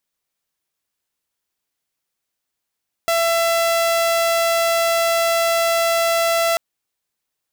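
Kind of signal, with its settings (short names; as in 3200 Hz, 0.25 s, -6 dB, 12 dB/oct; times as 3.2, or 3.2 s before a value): tone saw 670 Hz -13 dBFS 3.49 s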